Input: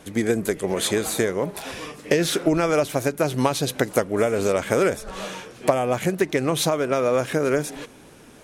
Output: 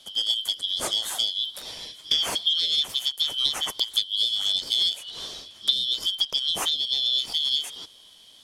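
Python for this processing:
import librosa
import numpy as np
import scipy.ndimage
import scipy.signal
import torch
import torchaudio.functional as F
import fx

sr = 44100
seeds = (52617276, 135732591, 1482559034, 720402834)

y = fx.band_shuffle(x, sr, order='3412')
y = F.gain(torch.from_numpy(y), -4.0).numpy()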